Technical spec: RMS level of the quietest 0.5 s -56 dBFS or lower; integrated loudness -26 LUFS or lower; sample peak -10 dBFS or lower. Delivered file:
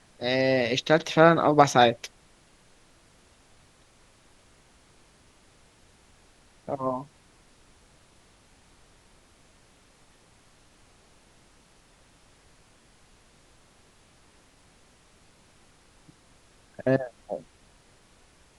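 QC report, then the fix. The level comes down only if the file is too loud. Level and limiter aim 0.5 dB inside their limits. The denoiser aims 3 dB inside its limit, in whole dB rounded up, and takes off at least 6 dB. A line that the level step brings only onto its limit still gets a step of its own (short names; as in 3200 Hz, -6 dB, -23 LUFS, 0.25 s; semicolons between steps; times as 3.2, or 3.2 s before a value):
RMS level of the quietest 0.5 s -59 dBFS: OK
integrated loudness -23.5 LUFS: fail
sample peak -2.5 dBFS: fail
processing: gain -3 dB; limiter -10.5 dBFS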